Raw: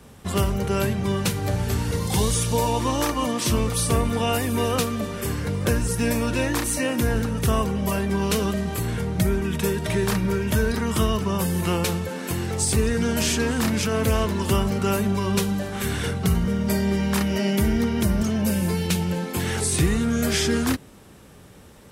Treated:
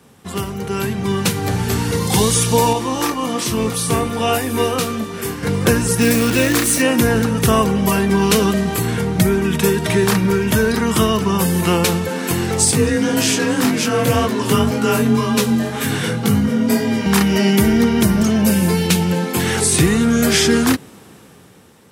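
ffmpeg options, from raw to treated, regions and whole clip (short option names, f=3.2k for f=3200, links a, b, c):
-filter_complex "[0:a]asettb=1/sr,asplit=3[a][b][c];[a]atrim=end=2.734[d];[b]atrim=start=2.73:end=5.43,asetpts=PTS-STARTPTS,afade=t=in:d=0.004:c=qsin,afade=t=out:st=2.696:d=0.004:c=qsin,flanger=delay=1:depth=6.5:regen=88:speed=1.2:shape=triangular,asplit=2[e][f];[f]adelay=23,volume=-7dB[g];[e][g]amix=inputs=2:normalize=0,atrim=end_sample=119070,tremolo=f=3.2:d=0.3[h];[c]atrim=start=5.426[i];[d][h]acrossfade=d=0.004:c1=hsin:c2=qsin[j];[j][i]acrossfade=d=0.004:c1=qsin:c2=hsin,asettb=1/sr,asplit=3[k][l][m];[k]atrim=end=6.014[n];[l]atrim=start=6.01:end=6.82,asetpts=PTS-STARTPTS,afade=t=in:d=0.004:c=qsin,afade=t=out:st=0.806:d=0.004:c=qsin,equalizer=f=880:t=o:w=0.32:g=-14,acrusher=bits=6:dc=4:mix=0:aa=0.000001[o];[m]atrim=start=6.816[p];[n][o]acrossfade=d=0.004:c1=hsin:c2=qsin[q];[q][p]acrossfade=d=0.004:c1=qsin:c2=hsin,asettb=1/sr,asplit=3[r][s][t];[r]atrim=end=12.714[u];[s]atrim=start=12.71:end=17.06,asetpts=PTS-STARTPTS,afade=t=in:d=0.004:c=qsin,afade=t=out:st=4.346:d=0.004:c=qsin,flanger=delay=16.5:depth=4.6:speed=1.9,afreqshift=31[v];[t]atrim=start=17.056[w];[u][v]acrossfade=d=0.004:c1=hsin:c2=qsin[x];[x][w]acrossfade=d=0.004:c1=qsin:c2=hsin,highpass=120,bandreject=f=590:w=12,dynaudnorm=f=230:g=9:m=11.5dB"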